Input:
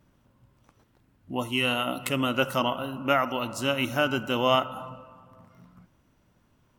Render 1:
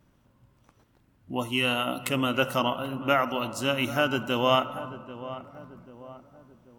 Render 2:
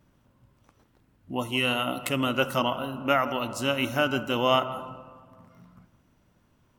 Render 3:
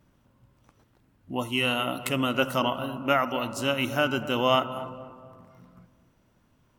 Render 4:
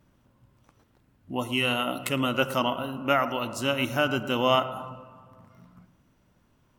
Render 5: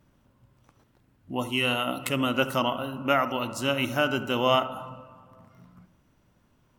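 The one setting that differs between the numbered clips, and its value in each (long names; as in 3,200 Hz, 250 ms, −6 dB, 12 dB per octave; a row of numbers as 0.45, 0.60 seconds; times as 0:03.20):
feedback echo with a low-pass in the loop, delay time: 788, 165, 243, 111, 72 milliseconds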